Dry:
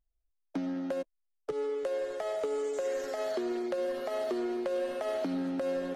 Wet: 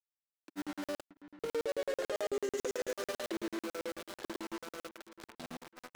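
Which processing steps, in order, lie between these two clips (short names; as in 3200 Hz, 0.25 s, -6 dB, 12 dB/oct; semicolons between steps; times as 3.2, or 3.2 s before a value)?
Doppler pass-by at 1.99, 27 m/s, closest 8.9 m; bell 720 Hz -8 dB 1.5 oct; sample gate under -51.5 dBFS; limiter -40.5 dBFS, peak gain reduction 11 dB; low shelf 220 Hz -8.5 dB; dark delay 0.634 s, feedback 34%, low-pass 2600 Hz, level -15 dB; grains, pitch spread up and down by 0 st; crackling interface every 0.11 s, samples 2048, zero, from 0.4; gain +15.5 dB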